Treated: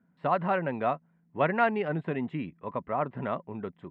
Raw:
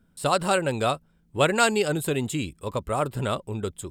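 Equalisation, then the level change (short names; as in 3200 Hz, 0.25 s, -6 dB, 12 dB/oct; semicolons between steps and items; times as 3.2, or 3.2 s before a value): speaker cabinet 140–2400 Hz, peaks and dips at 170 Hz +9 dB, 250 Hz +6 dB, 690 Hz +7 dB, 1000 Hz +7 dB, 1900 Hz +9 dB; -8.0 dB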